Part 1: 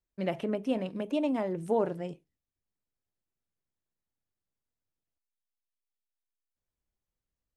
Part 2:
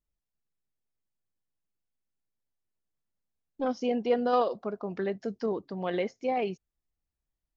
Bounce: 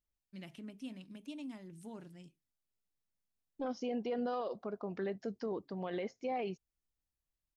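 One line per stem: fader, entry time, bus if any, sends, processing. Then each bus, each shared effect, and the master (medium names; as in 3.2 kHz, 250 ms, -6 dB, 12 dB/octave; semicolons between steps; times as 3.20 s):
-13.5 dB, 0.15 s, no send, FFT filter 280 Hz 0 dB, 490 Hz -15 dB, 4.7 kHz +8 dB
-5.0 dB, 0.00 s, no send, none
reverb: none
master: peak limiter -29 dBFS, peak gain reduction 9.5 dB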